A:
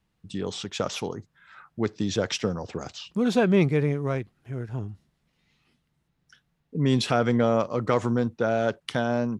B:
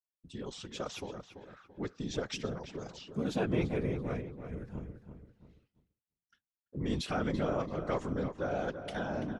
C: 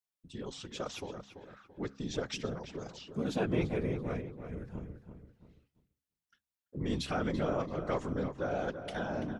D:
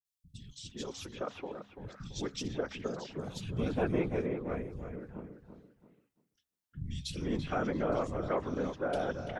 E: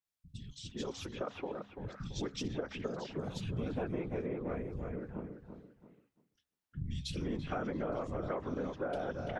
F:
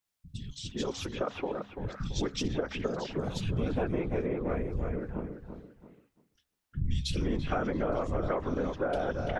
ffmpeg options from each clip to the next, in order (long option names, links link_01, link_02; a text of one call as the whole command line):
ffmpeg -i in.wav -filter_complex "[0:a]afftfilt=real='hypot(re,im)*cos(2*PI*random(0))':imag='hypot(re,im)*sin(2*PI*random(1))':win_size=512:overlap=0.75,asplit=2[link_01][link_02];[link_02]adelay=336,lowpass=frequency=2800:poles=1,volume=-9dB,asplit=2[link_03][link_04];[link_04]adelay=336,lowpass=frequency=2800:poles=1,volume=0.39,asplit=2[link_05][link_06];[link_06]adelay=336,lowpass=frequency=2800:poles=1,volume=0.39,asplit=2[link_07][link_08];[link_08]adelay=336,lowpass=frequency=2800:poles=1,volume=0.39[link_09];[link_01][link_03][link_05][link_07][link_09]amix=inputs=5:normalize=0,agate=range=-33dB:threshold=-55dB:ratio=3:detection=peak,volume=-4.5dB" out.wav
ffmpeg -i in.wav -af "bandreject=frequency=68.12:width_type=h:width=4,bandreject=frequency=136.24:width_type=h:width=4,bandreject=frequency=204.36:width_type=h:width=4,bandreject=frequency=272.48:width_type=h:width=4" out.wav
ffmpeg -i in.wav -filter_complex "[0:a]acrossover=split=160|2800[link_01][link_02][link_03];[link_03]adelay=50[link_04];[link_02]adelay=410[link_05];[link_01][link_05][link_04]amix=inputs=3:normalize=0,volume=1.5dB" out.wav
ffmpeg -i in.wav -af "highshelf=frequency=4600:gain=-8,acompressor=threshold=-36dB:ratio=6,volume=2.5dB" out.wav
ffmpeg -i in.wav -af "asubboost=boost=2:cutoff=80,volume=6.5dB" out.wav